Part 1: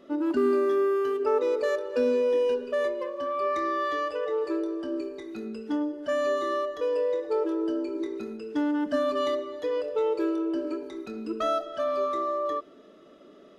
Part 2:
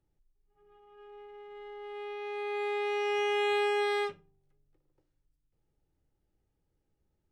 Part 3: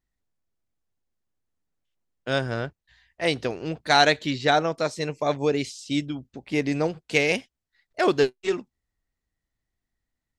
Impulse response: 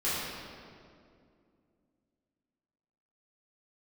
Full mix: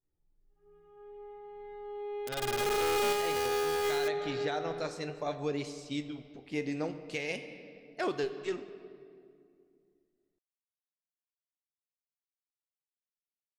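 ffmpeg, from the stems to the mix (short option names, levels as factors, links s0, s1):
-filter_complex "[0:a]lowpass=1200,bandreject=f=50:t=h:w=6,bandreject=f=100:t=h:w=6,bandreject=f=150:t=h:w=6,bandreject=f=200:t=h:w=6,bandreject=f=250:t=h:w=6,bandreject=f=300:t=h:w=6,bandreject=f=350:t=h:w=6,bandreject=f=400:t=h:w=6,asoftclip=type=tanh:threshold=0.0237,adelay=1400,volume=0.422[s0];[1:a]highshelf=f=2400:g=-11.5,volume=1.12,asplit=2[s1][s2];[s2]volume=0.158[s3];[2:a]flanger=delay=6.4:depth=4.8:regen=77:speed=0.53:shape=triangular,volume=0.211,asplit=2[s4][s5];[s5]volume=0.112[s6];[s0][s1]amix=inputs=2:normalize=0,acrusher=bits=4:mix=0:aa=0.000001,acompressor=threshold=0.0282:ratio=6,volume=1[s7];[3:a]atrim=start_sample=2205[s8];[s3][s6]amix=inputs=2:normalize=0[s9];[s9][s8]afir=irnorm=-1:irlink=0[s10];[s4][s7][s10]amix=inputs=3:normalize=0,dynaudnorm=f=240:g=3:m=2.24,alimiter=limit=0.075:level=0:latency=1:release=200"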